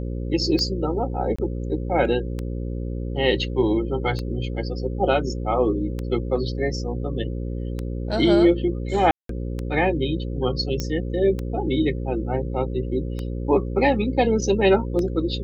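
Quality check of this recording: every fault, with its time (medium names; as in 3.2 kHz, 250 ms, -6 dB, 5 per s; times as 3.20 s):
buzz 60 Hz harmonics 9 -28 dBFS
tick 33 1/3 rpm -16 dBFS
1.36–1.39 s: dropout 25 ms
9.11–9.29 s: dropout 183 ms
10.80 s: pop -12 dBFS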